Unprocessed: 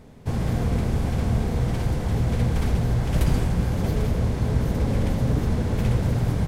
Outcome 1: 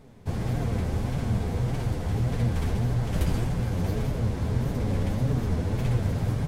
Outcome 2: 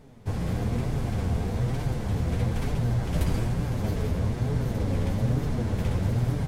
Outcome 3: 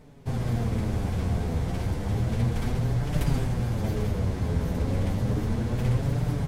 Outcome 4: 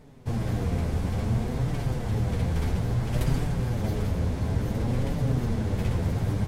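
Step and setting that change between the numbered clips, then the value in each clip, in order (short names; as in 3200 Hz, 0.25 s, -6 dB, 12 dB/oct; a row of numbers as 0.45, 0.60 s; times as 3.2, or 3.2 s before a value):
flange, rate: 1.7, 1.1, 0.32, 0.58 Hz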